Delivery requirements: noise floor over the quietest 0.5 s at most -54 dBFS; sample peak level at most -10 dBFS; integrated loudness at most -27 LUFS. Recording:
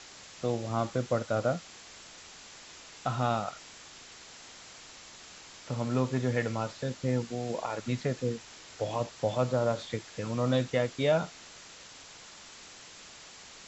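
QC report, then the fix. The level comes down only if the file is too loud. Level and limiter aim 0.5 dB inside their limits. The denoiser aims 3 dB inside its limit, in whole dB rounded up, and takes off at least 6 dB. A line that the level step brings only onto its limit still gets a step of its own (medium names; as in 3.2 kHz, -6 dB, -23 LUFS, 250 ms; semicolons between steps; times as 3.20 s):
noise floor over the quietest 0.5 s -50 dBFS: fail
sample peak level -13.5 dBFS: pass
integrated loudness -31.5 LUFS: pass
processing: noise reduction 7 dB, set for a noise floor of -50 dBFS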